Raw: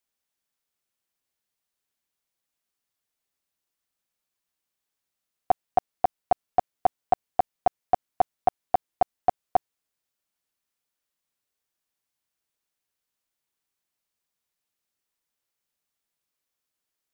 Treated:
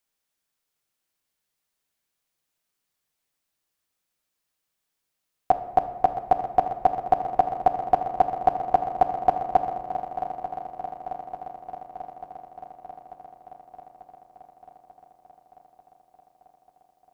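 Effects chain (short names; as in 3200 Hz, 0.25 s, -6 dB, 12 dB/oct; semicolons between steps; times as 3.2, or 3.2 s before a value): on a send: swung echo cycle 0.891 s, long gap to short 3:1, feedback 64%, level -11.5 dB; on the sum: shoebox room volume 740 m³, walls mixed, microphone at 0.55 m; gain +2.5 dB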